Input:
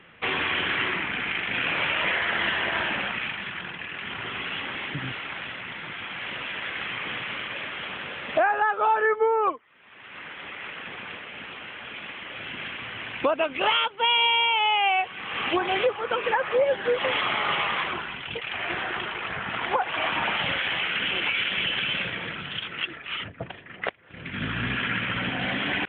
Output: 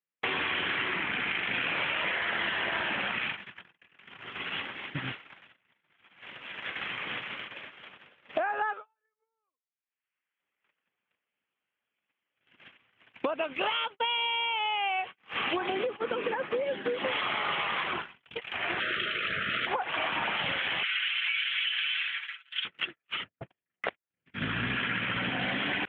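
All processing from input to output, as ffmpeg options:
-filter_complex "[0:a]asettb=1/sr,asplit=3[s0][s1][s2];[s0]atrim=end=8.734[s3];[s1]atrim=start=8.73:end=10.4,asetpts=PTS-STARTPTS,afade=t=in:d=0.004:c=qsin,afade=t=out:st=1.666:d=0.004:c=qsin,tiltshelf=f=1500:g=-7,acompressor=threshold=0.0178:ratio=6:attack=3.2:release=140:knee=1:detection=peak,lowpass=2800[s4];[s2]atrim=start=10.396[s5];[s3][s4]acrossfade=d=0.004:c1=hsin:c2=qsin[s6];[s6][s5]acrossfade=d=0.004:c1=qsin:c2=hsin,asettb=1/sr,asplit=3[s7][s8][s9];[s7]atrim=end=15.694[s10];[s8]atrim=start=15.69:end=17.06,asetpts=PTS-STARTPTS,afade=t=in:d=0.004:c=qsin,afade=t=out:st=1.366:d=0.004:c=qsin,acrossover=split=320|1800[s11][s12][s13];[s11]acompressor=threshold=0.00447:ratio=4[s14];[s12]acompressor=threshold=0.0224:ratio=4[s15];[s13]acompressor=threshold=0.0158:ratio=4[s16];[s14][s15][s16]amix=inputs=3:normalize=0,equalizer=f=260:w=0.85:g=15[s17];[s9]atrim=start=17.056[s18];[s10][s17]acrossfade=d=0.004:c1=hsin:c2=qsin[s19];[s19][s18]acrossfade=d=0.004:c1=qsin:c2=hsin,asettb=1/sr,asplit=3[s20][s21][s22];[s20]atrim=end=18.804[s23];[s21]atrim=start=18.8:end=19.67,asetpts=PTS-STARTPTS,afade=t=in:d=0.004:c=qsin,afade=t=out:st=0.866:d=0.004:c=qsin,asuperstop=centerf=880:order=12:qfactor=1.6,aemphasis=mode=production:type=75kf,asplit=2[s24][s25];[s25]adelay=32,volume=0.224[s26];[s24][s26]amix=inputs=2:normalize=0,atrim=end_sample=38367[s27];[s22]atrim=start=19.666[s28];[s23][s27]acrossfade=d=0.004:c1=hsin:c2=qsin[s29];[s29][s28]acrossfade=d=0.004:c1=qsin:c2=hsin,asettb=1/sr,asplit=3[s30][s31][s32];[s30]atrim=end=20.834[s33];[s31]atrim=start=20.83:end=22.65,asetpts=PTS-STARTPTS,afade=t=in:d=0.004:c=qsin,afade=t=out:st=1.816:d=0.004:c=qsin,highpass=f=1500:w=0.5412,highpass=f=1500:w=1.3066,aecho=1:1:6.6:0.83,atrim=end_sample=80262[s34];[s32]atrim=start=22.646[s35];[s33][s34]acrossfade=d=0.004:c1=hsin:c2=qsin[s36];[s36][s35]acrossfade=d=0.004:c1=qsin:c2=hsin,agate=range=0.00398:threshold=0.0282:ratio=16:detection=peak,lowshelf=f=68:g=-9,acompressor=threshold=0.0447:ratio=6"

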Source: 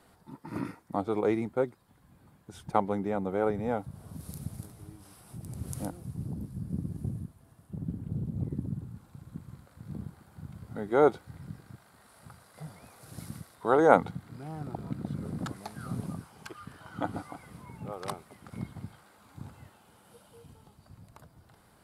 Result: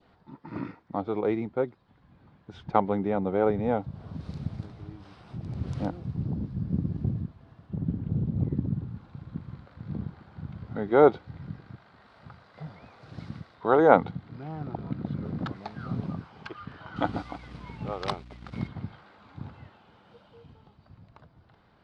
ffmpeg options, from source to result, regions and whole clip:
-filter_complex "[0:a]asettb=1/sr,asplit=3[s0][s1][s2];[s0]atrim=end=16.964[s3];[s1]atrim=start=16.96:end=18.68,asetpts=PTS-STARTPTS,afade=t=in:d=0.004:c=qsin,afade=t=out:st=1.716:d=0.004:c=qsin,aeval=exprs='sgn(val(0))*max(abs(val(0))-0.00126,0)':c=same,aemphasis=mode=production:type=75kf,aeval=exprs='val(0)+0.00251*(sin(2*PI*60*n/s)+sin(2*PI*2*60*n/s)/2+sin(2*PI*3*60*n/s)/3+sin(2*PI*4*60*n/s)/4+sin(2*PI*5*60*n/s)/5)':c=same[s4];[s2]atrim=start=18.676[s5];[s3][s4]acrossfade=d=0.004:c1=hsin:c2=qsin[s6];[s6][s5]acrossfade=d=0.004:c1=qsin:c2=hsin,lowpass=f=4200:w=0.5412,lowpass=f=4200:w=1.3066,adynamicequalizer=threshold=0.00398:dfrequency=1500:dqfactor=1.1:tfrequency=1500:tqfactor=1.1:attack=5:release=100:ratio=0.375:range=2:mode=cutabove:tftype=bell,dynaudnorm=f=310:g=17:m=2"

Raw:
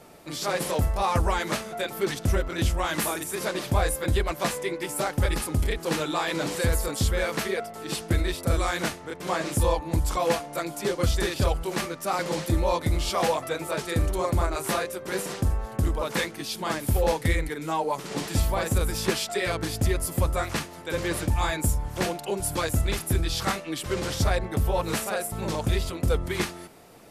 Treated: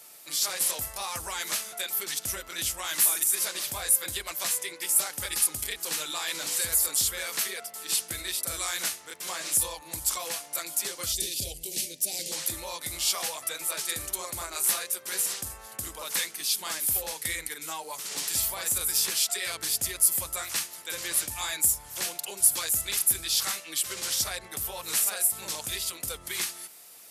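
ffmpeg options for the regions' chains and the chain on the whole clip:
-filter_complex "[0:a]asettb=1/sr,asplit=3[s0][s1][s2];[s0]atrim=end=11.124[s3];[s1]atrim=start=11.12:end=12.32,asetpts=PTS-STARTPTS,afade=t=in:d=0.004:c=qsin,afade=t=out:st=1.196:d=0.004:c=qsin,asuperstop=centerf=1200:order=4:qfactor=0.52,lowshelf=f=460:g=5.5[s4];[s2]atrim=start=12.316[s5];[s3][s4]acrossfade=d=0.004:c1=hsin:c2=qsin[s6];[s6][s5]acrossfade=d=0.004:c1=qsin:c2=hsin,lowshelf=f=140:g=10.5,acrossover=split=170[s7][s8];[s8]acompressor=threshold=0.0631:ratio=6[s9];[s7][s9]amix=inputs=2:normalize=0,aderivative,volume=2.82"

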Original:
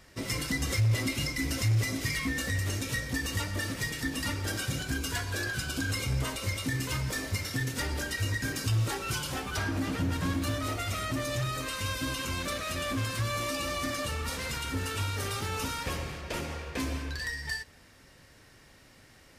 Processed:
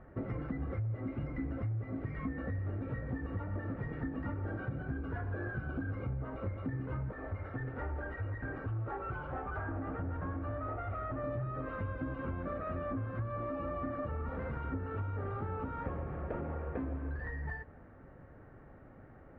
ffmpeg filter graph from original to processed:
-filter_complex "[0:a]asettb=1/sr,asplit=3[s0][s1][s2];[s0]atrim=end=7.124[s3];[s1]atrim=start=7.12:end=11.24,asetpts=PTS-STARTPTS,afade=t=in:d=0.004:c=qsin,afade=t=out:st=4.116:d=0.004:c=qsin,lowpass=f=2800:p=1,equalizer=f=190:t=o:w=2.1:g=-12,volume=39.8,asoftclip=hard,volume=0.0251[s4];[s2]atrim=start=11.236[s5];[s3][s4]acrossfade=d=0.004:c1=hsin:c2=qsin[s6];[s6][s5]acrossfade=d=0.004:c1=qsin:c2=hsin,lowpass=f=1300:w=0.5412,lowpass=f=1300:w=1.3066,bandreject=f=1000:w=6.3,acompressor=threshold=0.0112:ratio=6,volume=1.68"

